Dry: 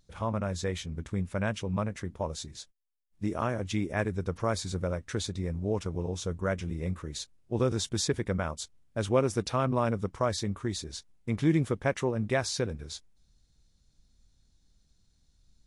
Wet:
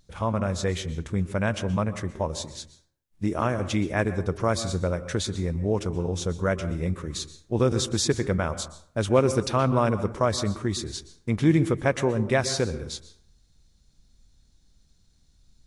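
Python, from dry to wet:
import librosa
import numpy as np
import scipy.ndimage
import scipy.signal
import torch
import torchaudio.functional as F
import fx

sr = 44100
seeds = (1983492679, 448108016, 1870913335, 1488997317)

y = fx.rev_plate(x, sr, seeds[0], rt60_s=0.6, hf_ratio=0.5, predelay_ms=110, drr_db=13.0)
y = F.gain(torch.from_numpy(y), 5.0).numpy()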